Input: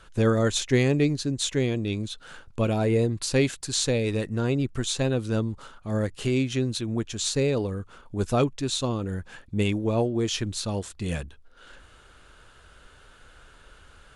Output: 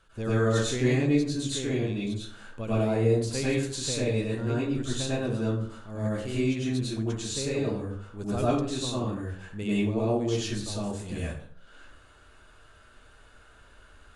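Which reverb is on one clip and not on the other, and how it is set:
dense smooth reverb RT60 0.58 s, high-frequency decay 0.55×, pre-delay 85 ms, DRR −8.5 dB
level −11.5 dB

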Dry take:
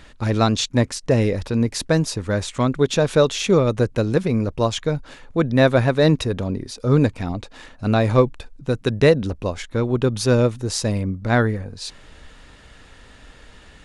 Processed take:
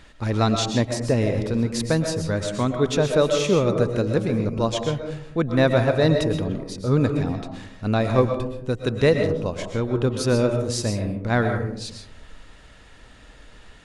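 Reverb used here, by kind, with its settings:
comb and all-pass reverb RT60 0.72 s, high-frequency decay 0.3×, pre-delay 85 ms, DRR 5 dB
level −3.5 dB

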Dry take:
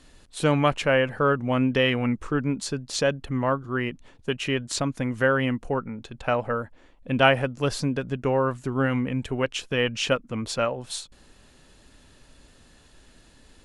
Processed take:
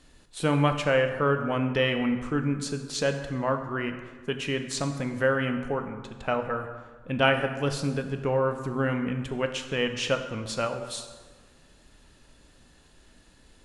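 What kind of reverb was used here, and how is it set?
dense smooth reverb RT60 1.5 s, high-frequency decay 0.65×, DRR 6 dB
level −3.5 dB

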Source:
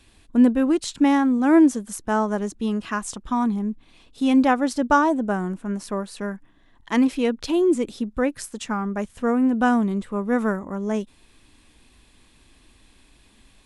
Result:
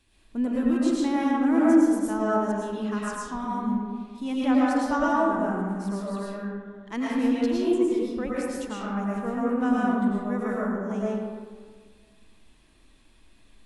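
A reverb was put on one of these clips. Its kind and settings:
comb and all-pass reverb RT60 1.7 s, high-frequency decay 0.45×, pre-delay 70 ms, DRR −6.5 dB
level −11.5 dB

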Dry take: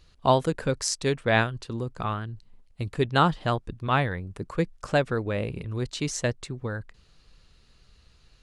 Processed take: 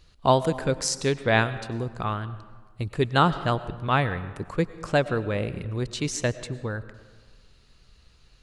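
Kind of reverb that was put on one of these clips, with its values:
comb and all-pass reverb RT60 1.5 s, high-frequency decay 0.6×, pre-delay 70 ms, DRR 14.5 dB
level +1 dB

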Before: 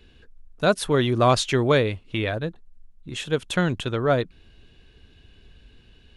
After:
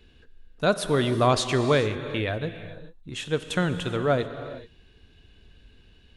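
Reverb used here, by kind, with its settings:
reverb whose tail is shaped and stops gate 460 ms flat, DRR 9.5 dB
level −2.5 dB

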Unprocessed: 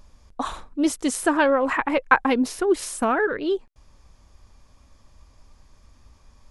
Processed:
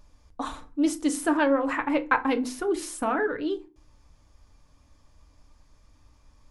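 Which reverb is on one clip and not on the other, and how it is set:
feedback delay network reverb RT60 0.32 s, low-frequency decay 1.55×, high-frequency decay 0.7×, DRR 7 dB
level −5.5 dB

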